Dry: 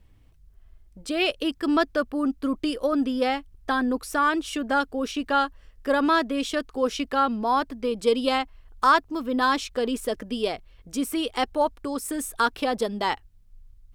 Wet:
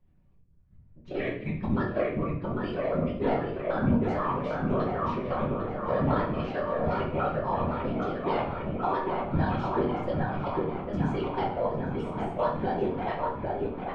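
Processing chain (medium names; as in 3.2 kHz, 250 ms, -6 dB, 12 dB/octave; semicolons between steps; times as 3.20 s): pitch shift switched off and on -4.5 st, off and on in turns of 109 ms; bass shelf 66 Hz -4.5 dB; level held to a coarse grid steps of 13 dB; robot voice 192 Hz; on a send: feedback echo behind a low-pass 801 ms, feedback 67%, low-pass 2.8 kHz, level -3 dB; on the sum: whisper effect; tape spacing loss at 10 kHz 36 dB; simulated room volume 130 m³, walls mixed, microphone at 1 m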